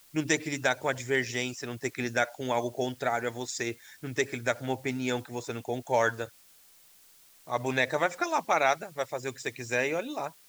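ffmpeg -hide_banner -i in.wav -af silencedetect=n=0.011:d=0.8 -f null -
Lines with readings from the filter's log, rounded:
silence_start: 6.26
silence_end: 7.47 | silence_duration: 1.22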